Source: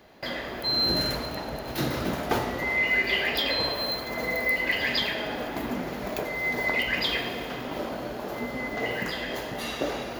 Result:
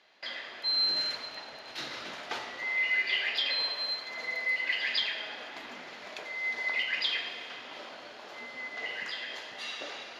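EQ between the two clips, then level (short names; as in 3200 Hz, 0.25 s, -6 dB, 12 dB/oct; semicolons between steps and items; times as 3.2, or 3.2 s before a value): band-pass 4000 Hz, Q 0.71; air absorption 71 m; 0.0 dB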